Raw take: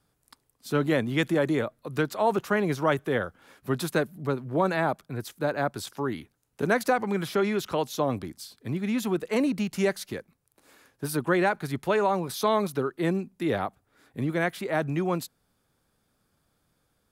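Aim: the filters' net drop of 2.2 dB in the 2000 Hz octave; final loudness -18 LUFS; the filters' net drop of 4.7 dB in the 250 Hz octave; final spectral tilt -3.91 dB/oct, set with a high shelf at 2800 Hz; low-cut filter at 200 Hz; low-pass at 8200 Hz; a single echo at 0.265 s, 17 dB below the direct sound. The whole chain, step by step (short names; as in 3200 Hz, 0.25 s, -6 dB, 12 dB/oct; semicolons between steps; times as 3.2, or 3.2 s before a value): HPF 200 Hz; LPF 8200 Hz; bell 250 Hz -4.5 dB; bell 2000 Hz -6 dB; high shelf 2800 Hz +8.5 dB; echo 0.265 s -17 dB; gain +11.5 dB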